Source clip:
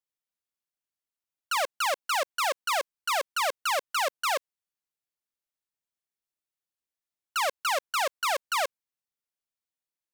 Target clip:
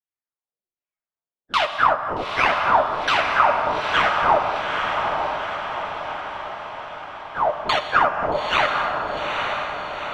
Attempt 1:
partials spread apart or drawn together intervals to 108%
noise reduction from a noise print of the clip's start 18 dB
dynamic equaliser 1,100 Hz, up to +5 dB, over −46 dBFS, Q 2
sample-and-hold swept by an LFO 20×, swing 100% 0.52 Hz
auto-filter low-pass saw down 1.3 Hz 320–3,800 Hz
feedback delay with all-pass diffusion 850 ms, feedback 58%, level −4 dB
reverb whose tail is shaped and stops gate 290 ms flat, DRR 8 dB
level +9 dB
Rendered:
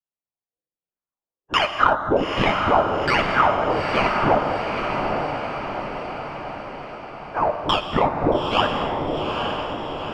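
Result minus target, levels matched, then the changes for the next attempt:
sample-and-hold swept by an LFO: distortion +14 dB
change: sample-and-hold swept by an LFO 8×, swing 100% 0.52 Hz

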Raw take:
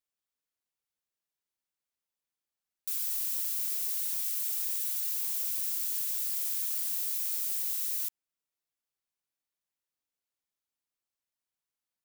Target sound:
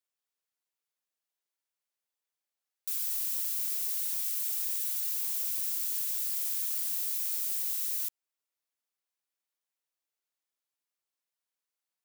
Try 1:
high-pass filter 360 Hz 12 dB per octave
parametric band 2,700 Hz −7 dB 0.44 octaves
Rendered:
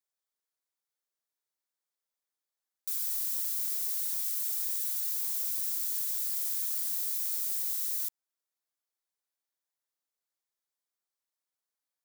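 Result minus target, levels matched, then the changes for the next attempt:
2,000 Hz band −2.5 dB
remove: parametric band 2,700 Hz −7 dB 0.44 octaves

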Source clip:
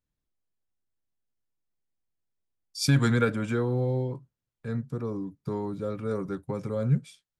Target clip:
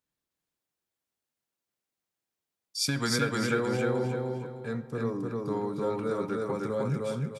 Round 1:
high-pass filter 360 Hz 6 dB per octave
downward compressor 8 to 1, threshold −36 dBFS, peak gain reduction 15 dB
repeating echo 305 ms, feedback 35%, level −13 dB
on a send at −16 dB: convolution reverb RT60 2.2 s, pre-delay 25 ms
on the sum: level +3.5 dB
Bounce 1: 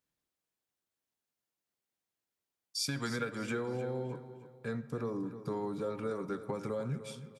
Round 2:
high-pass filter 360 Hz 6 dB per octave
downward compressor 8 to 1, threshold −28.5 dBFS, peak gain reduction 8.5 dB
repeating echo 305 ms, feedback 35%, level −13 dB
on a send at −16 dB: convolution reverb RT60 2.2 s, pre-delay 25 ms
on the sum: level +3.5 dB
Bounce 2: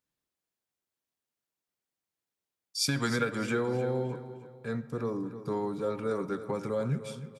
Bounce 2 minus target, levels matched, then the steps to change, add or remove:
echo-to-direct −9.5 dB
change: repeating echo 305 ms, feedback 35%, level −2 dB

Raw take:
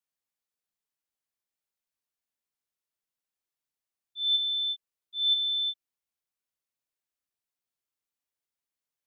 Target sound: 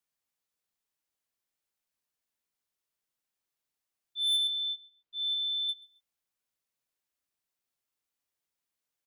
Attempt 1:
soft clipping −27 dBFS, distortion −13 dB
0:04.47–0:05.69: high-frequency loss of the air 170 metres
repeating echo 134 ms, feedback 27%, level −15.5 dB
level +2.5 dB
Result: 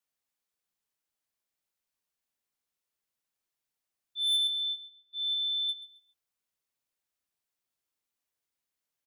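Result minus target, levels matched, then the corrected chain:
echo-to-direct +7.5 dB
soft clipping −27 dBFS, distortion −13 dB
0:04.47–0:05.69: high-frequency loss of the air 170 metres
repeating echo 134 ms, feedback 27%, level −23 dB
level +2.5 dB

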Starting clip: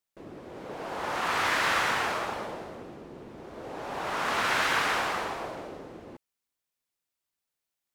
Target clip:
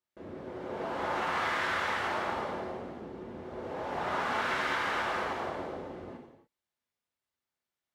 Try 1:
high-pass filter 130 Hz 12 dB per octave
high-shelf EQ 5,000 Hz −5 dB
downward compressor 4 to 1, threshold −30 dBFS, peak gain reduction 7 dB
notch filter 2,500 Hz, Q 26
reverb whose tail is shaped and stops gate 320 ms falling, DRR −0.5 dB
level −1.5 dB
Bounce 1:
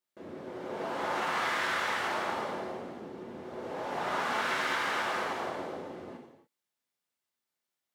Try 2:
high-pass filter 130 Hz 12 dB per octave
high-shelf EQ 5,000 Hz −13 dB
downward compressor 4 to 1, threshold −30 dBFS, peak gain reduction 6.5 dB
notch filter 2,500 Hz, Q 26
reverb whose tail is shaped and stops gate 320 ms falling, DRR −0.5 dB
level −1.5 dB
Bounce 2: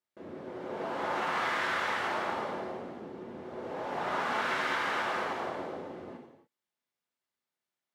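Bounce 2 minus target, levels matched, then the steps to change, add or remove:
125 Hz band −3.0 dB
change: high-pass filter 40 Hz 12 dB per octave

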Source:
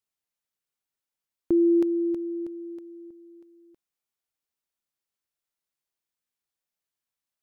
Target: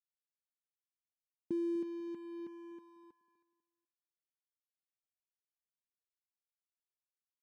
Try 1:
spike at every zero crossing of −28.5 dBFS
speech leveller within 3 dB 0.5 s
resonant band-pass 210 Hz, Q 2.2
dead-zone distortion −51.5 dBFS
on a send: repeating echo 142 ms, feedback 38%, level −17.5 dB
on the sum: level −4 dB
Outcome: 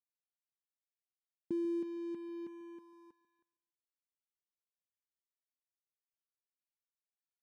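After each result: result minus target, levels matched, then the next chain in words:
echo 106 ms early; spike at every zero crossing: distortion +6 dB
spike at every zero crossing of −28.5 dBFS
speech leveller within 3 dB 0.5 s
resonant band-pass 210 Hz, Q 2.2
dead-zone distortion −51.5 dBFS
on a send: repeating echo 248 ms, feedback 38%, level −17.5 dB
on the sum: level −4 dB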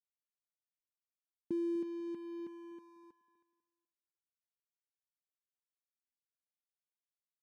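spike at every zero crossing: distortion +6 dB
spike at every zero crossing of −34.5 dBFS
speech leveller within 3 dB 0.5 s
resonant band-pass 210 Hz, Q 2.2
dead-zone distortion −51.5 dBFS
on a send: repeating echo 248 ms, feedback 38%, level −17.5 dB
on the sum: level −4 dB

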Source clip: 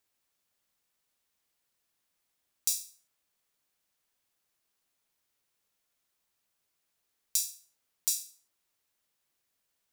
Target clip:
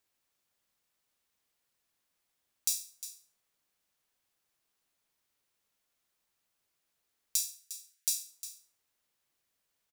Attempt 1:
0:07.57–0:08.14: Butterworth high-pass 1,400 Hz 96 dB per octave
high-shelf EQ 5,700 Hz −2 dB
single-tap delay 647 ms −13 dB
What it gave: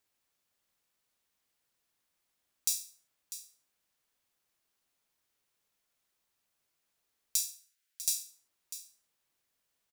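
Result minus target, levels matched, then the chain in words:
echo 292 ms late
0:07.57–0:08.14: Butterworth high-pass 1,400 Hz 96 dB per octave
high-shelf EQ 5,700 Hz −2 dB
single-tap delay 355 ms −13 dB

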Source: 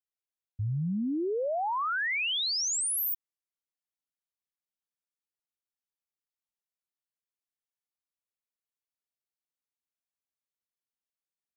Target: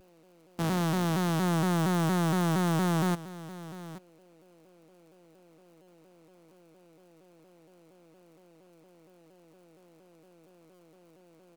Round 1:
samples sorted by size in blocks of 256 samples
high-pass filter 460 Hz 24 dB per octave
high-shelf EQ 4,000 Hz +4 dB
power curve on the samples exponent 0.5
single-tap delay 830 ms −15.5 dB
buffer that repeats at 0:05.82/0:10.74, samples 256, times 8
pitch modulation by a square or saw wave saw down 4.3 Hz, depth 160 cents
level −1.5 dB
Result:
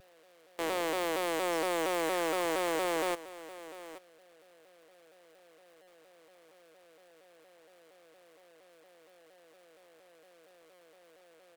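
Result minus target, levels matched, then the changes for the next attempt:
250 Hz band −6.5 dB
change: high-pass filter 180 Hz 24 dB per octave

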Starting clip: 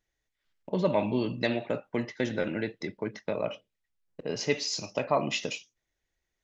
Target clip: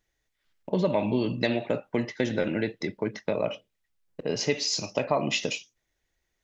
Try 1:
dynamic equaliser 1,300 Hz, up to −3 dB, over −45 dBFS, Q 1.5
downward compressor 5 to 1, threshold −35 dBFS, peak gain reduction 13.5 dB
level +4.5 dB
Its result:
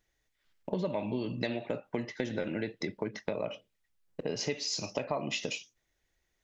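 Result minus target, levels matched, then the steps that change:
downward compressor: peak gain reduction +8.5 dB
change: downward compressor 5 to 1, threshold −24.5 dBFS, peak gain reduction 5 dB

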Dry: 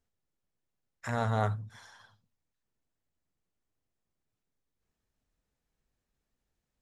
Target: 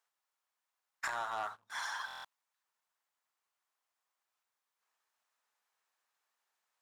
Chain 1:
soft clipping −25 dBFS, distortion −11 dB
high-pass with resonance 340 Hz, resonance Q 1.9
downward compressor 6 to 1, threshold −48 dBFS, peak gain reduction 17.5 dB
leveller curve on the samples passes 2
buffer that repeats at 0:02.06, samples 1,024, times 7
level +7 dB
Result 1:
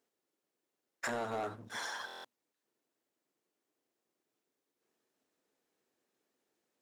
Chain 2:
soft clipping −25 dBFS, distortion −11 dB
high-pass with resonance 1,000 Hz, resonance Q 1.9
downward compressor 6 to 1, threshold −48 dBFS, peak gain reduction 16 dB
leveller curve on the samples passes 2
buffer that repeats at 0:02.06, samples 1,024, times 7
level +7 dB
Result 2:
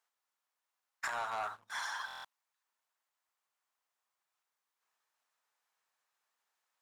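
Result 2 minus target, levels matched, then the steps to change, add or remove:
soft clipping: distortion +11 dB
change: soft clipping −15.5 dBFS, distortion −22 dB

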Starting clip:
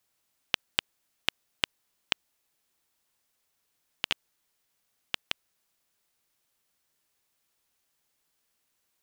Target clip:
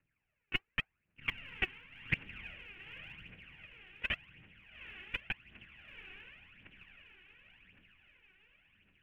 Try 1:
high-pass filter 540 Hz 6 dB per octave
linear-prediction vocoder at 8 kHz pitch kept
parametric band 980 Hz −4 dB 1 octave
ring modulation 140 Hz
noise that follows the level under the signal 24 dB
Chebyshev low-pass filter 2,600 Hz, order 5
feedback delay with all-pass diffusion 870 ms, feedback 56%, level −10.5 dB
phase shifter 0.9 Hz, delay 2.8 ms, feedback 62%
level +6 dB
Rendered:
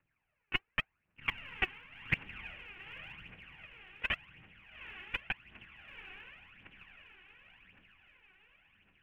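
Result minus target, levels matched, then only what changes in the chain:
1,000 Hz band +4.5 dB
change: parametric band 980 Hz −13 dB 1 octave

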